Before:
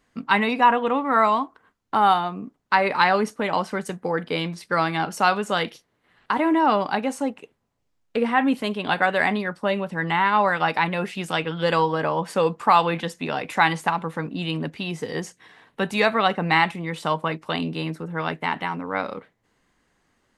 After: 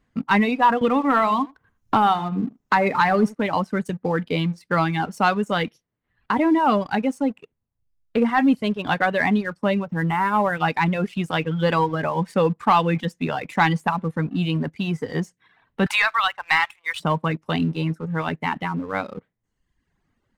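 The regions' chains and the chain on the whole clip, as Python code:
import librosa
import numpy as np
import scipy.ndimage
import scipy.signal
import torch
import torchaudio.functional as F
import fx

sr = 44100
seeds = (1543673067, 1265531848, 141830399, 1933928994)

y = fx.chain(x, sr, fx.echo_single(ms=81, db=-12.5),
    fx.band_squash(depth_pct=70), at=(0.81, 3.35))
y = fx.chain(y, sr, fx.high_shelf(hz=3100.0, db=-10.5),
    fx.resample_linear(factor=4), at=(9.85, 10.59))
y = fx.chain(y, sr, fx.highpass(hz=1000.0, slope=24),
    fx.leveller(passes=1),
    fx.band_squash(depth_pct=70), at=(15.86, 17.0))
y = fx.dereverb_blind(y, sr, rt60_s=0.99)
y = fx.bass_treble(y, sr, bass_db=10, treble_db=-6)
y = fx.leveller(y, sr, passes=1)
y = y * librosa.db_to_amplitude(-3.0)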